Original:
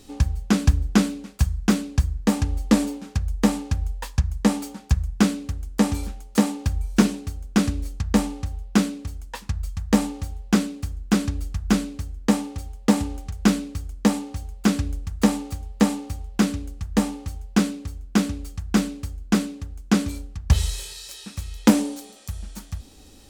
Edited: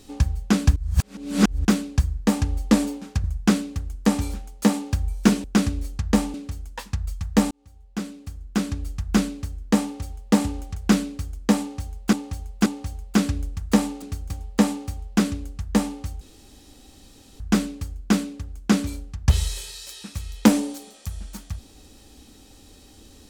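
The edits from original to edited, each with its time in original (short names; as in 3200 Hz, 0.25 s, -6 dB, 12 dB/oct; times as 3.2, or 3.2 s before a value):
0.76–1.65 reverse
3.24–4.97 cut
7.17–7.45 move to 15.52
8.35–8.9 cut
10.07–11.72 fade in
14.16–14.69 loop, 3 plays
17.43–18.62 room tone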